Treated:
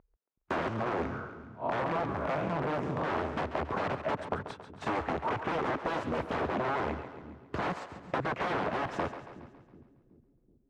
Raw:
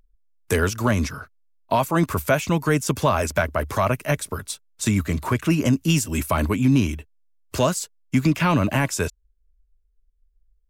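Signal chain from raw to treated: 0.68–3.37 time blur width 0.148 s; wrapped overs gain 20 dB; LPF 1200 Hz 12 dB/oct; compressor, threshold -33 dBFS, peak gain reduction 8.5 dB; HPF 220 Hz 6 dB/oct; split-band echo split 340 Hz, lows 0.374 s, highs 0.138 s, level -11 dB; Doppler distortion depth 0.15 ms; gain +5.5 dB

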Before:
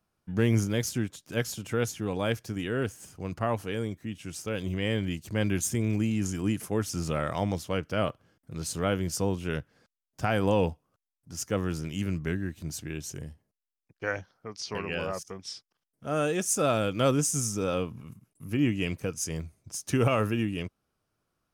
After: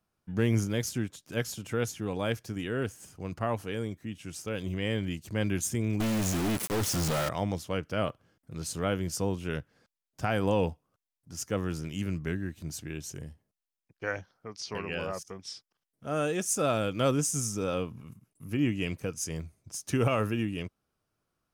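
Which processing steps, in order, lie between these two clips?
6–7.29 companded quantiser 2-bit; gain -2 dB

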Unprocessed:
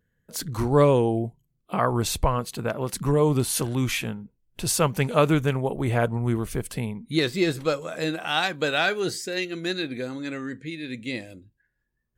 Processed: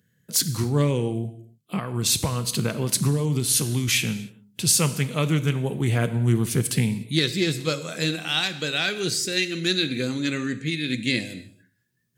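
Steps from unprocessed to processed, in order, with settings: HPF 110 Hz 24 dB/oct; 1.78–3.88 compressor, threshold -26 dBFS, peak gain reduction 10.5 dB; bell 4400 Hz +2.5 dB 2.5 oct; vocal rider within 5 dB 0.5 s; bell 810 Hz -14 dB 2.6 oct; non-linear reverb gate 0.32 s falling, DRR 11 dB; Doppler distortion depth 0.13 ms; gain +7 dB

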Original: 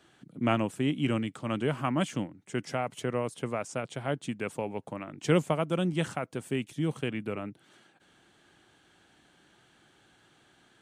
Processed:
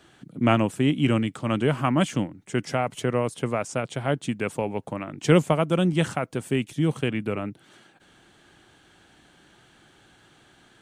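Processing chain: low shelf 69 Hz +7.5 dB; gain +6 dB

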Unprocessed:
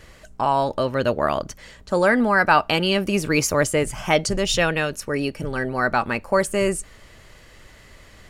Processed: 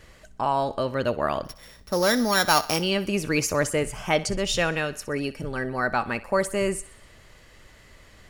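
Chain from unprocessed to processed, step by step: 1.44–2.81 sample sorter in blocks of 8 samples; thinning echo 63 ms, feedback 54%, level -17 dB; gain -4 dB

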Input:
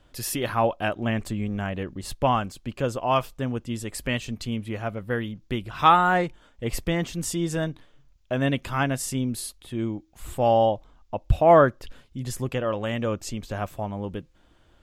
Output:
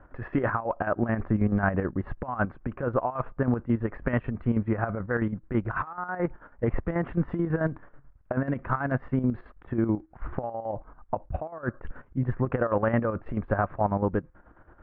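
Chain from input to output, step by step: steep low-pass 1600 Hz 36 dB/oct; tilt shelf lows -5 dB, about 1200 Hz; negative-ratio compressor -32 dBFS, ratio -1; chopper 9.2 Hz, depth 60%, duty 55%; gain +6.5 dB

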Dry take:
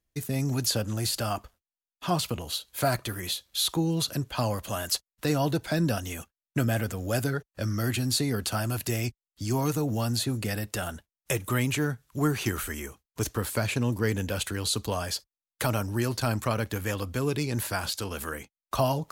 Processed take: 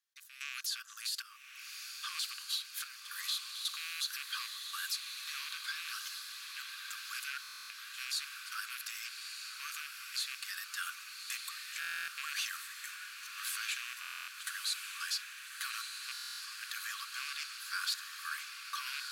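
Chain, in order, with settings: rattling part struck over -28 dBFS, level -21 dBFS; limiter -24 dBFS, peak gain reduction 11 dB; step gate "x..xxxxxx..x" 111 bpm -12 dB; vocal rider within 4 dB 2 s; rippled Chebyshev high-pass 1100 Hz, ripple 6 dB; diffused feedback echo 1.231 s, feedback 64%, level -5 dB; stuck buffer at 7.42/11.8/14/16.12, samples 1024, times 11; gain +1 dB

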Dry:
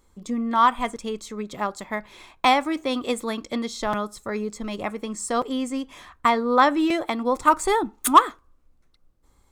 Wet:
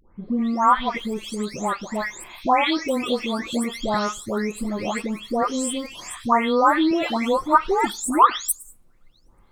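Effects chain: spectral delay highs late, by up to 0.444 s; in parallel at +1 dB: compressor, threshold -31 dBFS, peak gain reduction 19.5 dB

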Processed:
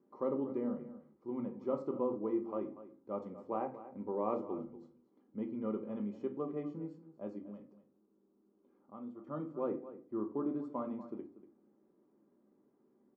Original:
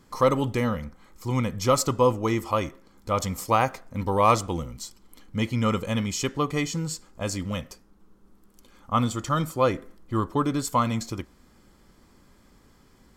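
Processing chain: 7.38–9.27 compressor 1.5:1, threshold -47 dBFS, peak gain reduction 10.5 dB; ladder band-pass 370 Hz, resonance 45%; outdoor echo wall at 41 m, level -14 dB; reverb RT60 0.35 s, pre-delay 5 ms, DRR 5 dB; gain -1.5 dB

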